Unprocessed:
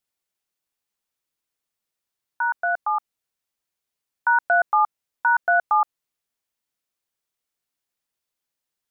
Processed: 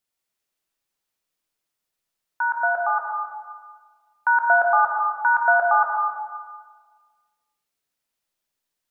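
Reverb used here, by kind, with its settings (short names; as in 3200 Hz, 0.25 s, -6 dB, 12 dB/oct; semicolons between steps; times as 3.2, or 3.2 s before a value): digital reverb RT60 1.5 s, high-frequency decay 0.85×, pre-delay 90 ms, DRR 0 dB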